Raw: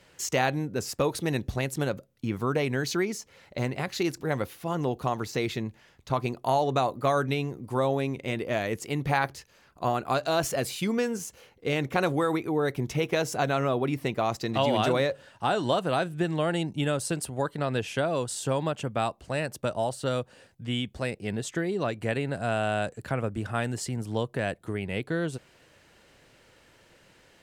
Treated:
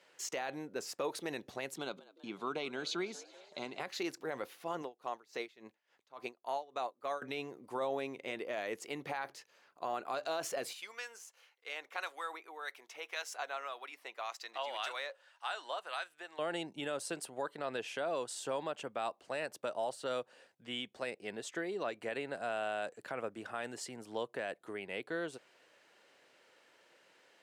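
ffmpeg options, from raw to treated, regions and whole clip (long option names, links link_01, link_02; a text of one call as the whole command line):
ffmpeg -i in.wav -filter_complex "[0:a]asettb=1/sr,asplit=3[link_01][link_02][link_03];[link_01]atrim=end=1.774[link_04];[link_02]atrim=start=1.77:end=3.8,asetpts=PTS-STARTPTS,afade=type=in:duration=0.004:curve=qsin,afade=type=out:start_time=2.026:duration=0.004:curve=qsin,highpass=170,equalizer=frequency=170:width_type=q:width=4:gain=8,equalizer=frequency=520:width_type=q:width=4:gain=-9,equalizer=frequency=1800:width_type=q:width=4:gain=-7,equalizer=frequency=3700:width_type=q:width=4:gain=9,equalizer=frequency=5500:width_type=q:width=4:gain=-5,equalizer=frequency=8600:width_type=q:width=4:gain=-5,lowpass=frequency=9700:width=0.5412,lowpass=frequency=9700:width=1.3066,bandreject=frequency=1800:width=8,asplit=6[link_05][link_06][link_07][link_08][link_09][link_10];[link_06]adelay=193,afreqshift=90,volume=-22dB[link_11];[link_07]adelay=386,afreqshift=180,volume=-25.9dB[link_12];[link_08]adelay=579,afreqshift=270,volume=-29.8dB[link_13];[link_09]adelay=772,afreqshift=360,volume=-33.6dB[link_14];[link_10]adelay=965,afreqshift=450,volume=-37.5dB[link_15];[link_05][link_11][link_12][link_13][link_14][link_15]amix=inputs=6:normalize=0,atrim=end_sample=89523[link_16];[link_03]atrim=start=3.796[link_17];[link_04][link_16]acrossfade=duration=0.004:curve1=hsin:curve2=qsin[link_18];[link_18][link_17]acrossfade=duration=0.004:curve1=qsin:curve2=hsin,asettb=1/sr,asplit=3[link_19][link_20][link_21];[link_19]atrim=end=4.824[link_22];[link_20]atrim=start=4.82:end=7.22,asetpts=PTS-STARTPTS,afade=type=in:duration=0.004:curve=qsin,afade=type=out:start_time=2.396:duration=0.004:curve=qsin,highpass=frequency=250:poles=1,aeval=exprs='val(0)*pow(10,-23*(0.5-0.5*cos(2*PI*3.5*n/s))/20)':channel_layout=same[link_23];[link_21]atrim=start=7.216[link_24];[link_22][link_23]acrossfade=duration=0.004:curve1=hsin:curve2=qsin[link_25];[link_25][link_24]acrossfade=duration=0.004:curve1=qsin:curve2=hsin,asettb=1/sr,asplit=3[link_26][link_27][link_28];[link_26]atrim=end=10.734[link_29];[link_27]atrim=start=10.73:end=16.39,asetpts=PTS-STARTPTS,afade=type=in:duration=0.004:curve=qsin,afade=type=out:start_time=5.656:duration=0.004:curve=qsin,highpass=990,acrossover=split=1100[link_30][link_31];[link_30]aeval=exprs='val(0)*(1-0.5/2+0.5/2*cos(2*PI*1.8*n/s))':channel_layout=same[link_32];[link_31]aeval=exprs='val(0)*(1-0.5/2-0.5/2*cos(2*PI*1.8*n/s))':channel_layout=same[link_33];[link_32][link_33]amix=inputs=2:normalize=0[link_34];[link_28]atrim=start=16.386[link_35];[link_29][link_34]acrossfade=duration=0.004:curve1=hsin:curve2=qsin[link_36];[link_36][link_35]acrossfade=duration=0.004:curve1=qsin:curve2=hsin,highpass=400,highshelf=frequency=7700:gain=-7.5,alimiter=limit=-21dB:level=0:latency=1:release=32,volume=-5.5dB" out.wav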